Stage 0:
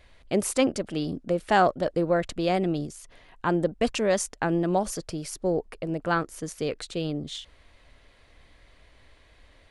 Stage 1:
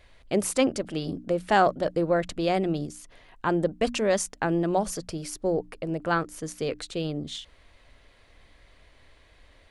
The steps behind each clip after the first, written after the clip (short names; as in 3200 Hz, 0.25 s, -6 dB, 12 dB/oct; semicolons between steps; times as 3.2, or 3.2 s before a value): notches 60/120/180/240/300 Hz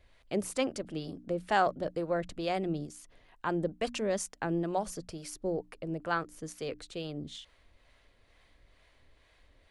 harmonic tremolo 2.2 Hz, depth 50%, crossover 510 Hz; gain -5 dB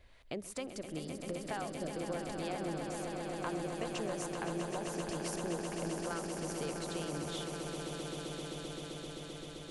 compressor, threshold -40 dBFS, peak gain reduction 17.5 dB; swelling echo 0.13 s, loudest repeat 8, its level -8.5 dB; gain +1.5 dB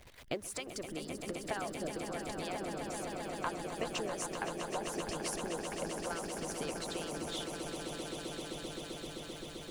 zero-crossing step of -51.5 dBFS; harmonic-percussive split harmonic -16 dB; gain +4.5 dB